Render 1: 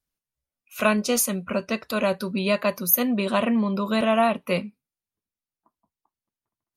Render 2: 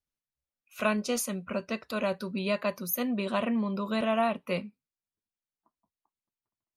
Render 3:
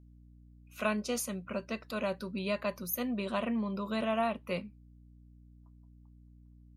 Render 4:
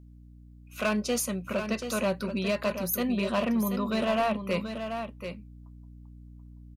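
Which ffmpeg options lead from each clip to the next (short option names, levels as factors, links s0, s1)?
-af "highshelf=f=11000:g=-10,volume=0.473"
-af "aeval=exprs='val(0)+0.00282*(sin(2*PI*60*n/s)+sin(2*PI*2*60*n/s)/2+sin(2*PI*3*60*n/s)/3+sin(2*PI*4*60*n/s)/4+sin(2*PI*5*60*n/s)/5)':c=same,volume=0.631"
-af "asoftclip=type=hard:threshold=0.0422,aecho=1:1:733:0.398,volume=2"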